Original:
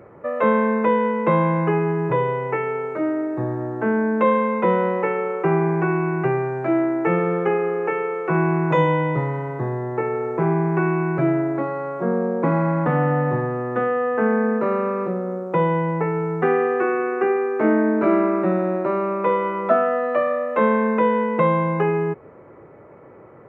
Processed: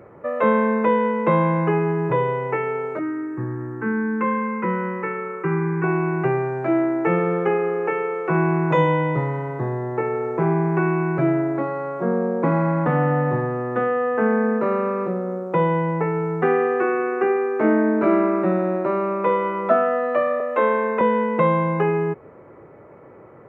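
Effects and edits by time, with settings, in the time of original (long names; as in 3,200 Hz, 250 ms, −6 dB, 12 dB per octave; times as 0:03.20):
0:02.99–0:05.84: phaser with its sweep stopped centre 1,600 Hz, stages 4
0:20.40–0:21.01: Butterworth high-pass 240 Hz 72 dB per octave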